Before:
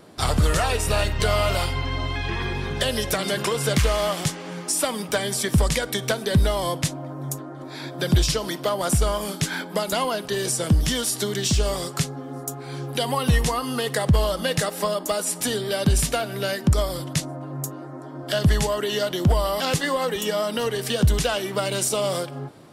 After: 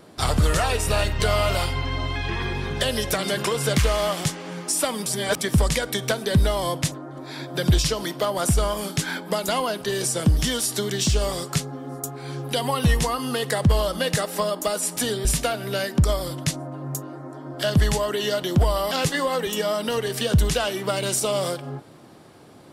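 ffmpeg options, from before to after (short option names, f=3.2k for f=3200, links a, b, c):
-filter_complex "[0:a]asplit=5[a][b][c][d][e];[a]atrim=end=5.062[f];[b]atrim=start=5.058:end=5.412,asetpts=PTS-STARTPTS,areverse[g];[c]atrim=start=5.408:end=6.922[h];[d]atrim=start=7.358:end=15.692[i];[e]atrim=start=15.938[j];[f][g]acrossfade=d=0.004:c1=hsin:c2=hsin[k];[k][h]acrossfade=d=0.004:c1=hsin:c2=hsin[l];[l][i]acrossfade=d=0.004:c1=hsin:c2=hsin[m];[m][j]acrossfade=d=0.004:c1=hsin:c2=hsin"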